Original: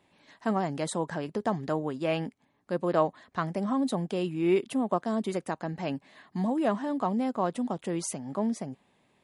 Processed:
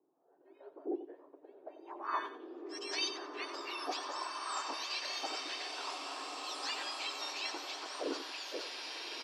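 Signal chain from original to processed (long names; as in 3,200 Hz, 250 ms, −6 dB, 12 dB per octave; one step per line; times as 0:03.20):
frequency axis turned over on the octave scale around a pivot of 1,700 Hz
transient designer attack −10 dB, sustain +6 dB
high-pass filter 160 Hz 12 dB per octave
tilt shelving filter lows +4.5 dB, about 1,400 Hz
low-pass filter sweep 360 Hz → 5,800 Hz, 0:01.54–0:02.59
three-way crossover with the lows and the highs turned down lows −18 dB, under 500 Hz, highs −15 dB, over 3,900 Hz
repeating echo 92 ms, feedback 29%, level −11 dB
slow-attack reverb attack 2,350 ms, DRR 0.5 dB
level +1 dB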